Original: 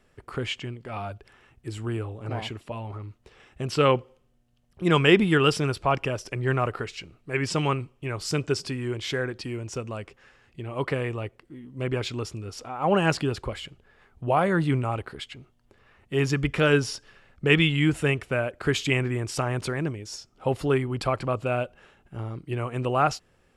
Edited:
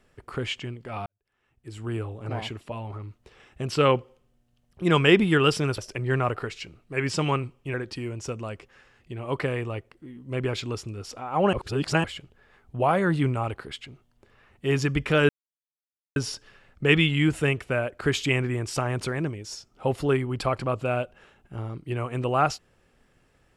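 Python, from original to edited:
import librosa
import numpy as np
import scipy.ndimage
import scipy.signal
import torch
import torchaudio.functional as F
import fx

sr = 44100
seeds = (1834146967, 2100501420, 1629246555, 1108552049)

y = fx.edit(x, sr, fx.fade_in_span(start_s=1.06, length_s=0.9, curve='qua'),
    fx.cut(start_s=5.78, length_s=0.37),
    fx.cut(start_s=8.11, length_s=1.11),
    fx.reverse_span(start_s=13.01, length_s=0.51),
    fx.insert_silence(at_s=16.77, length_s=0.87), tone=tone)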